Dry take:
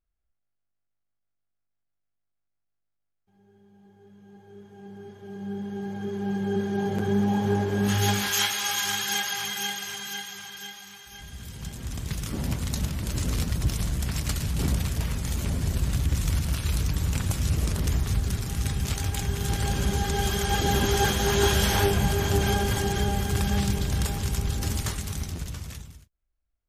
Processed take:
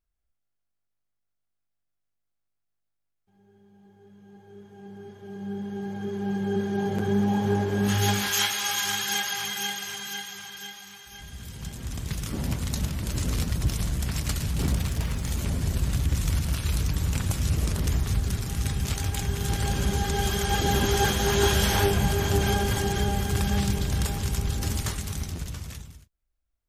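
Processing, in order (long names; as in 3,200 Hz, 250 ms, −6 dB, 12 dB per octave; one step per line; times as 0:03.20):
0:14.56–0:15.29: slack as between gear wheels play −47 dBFS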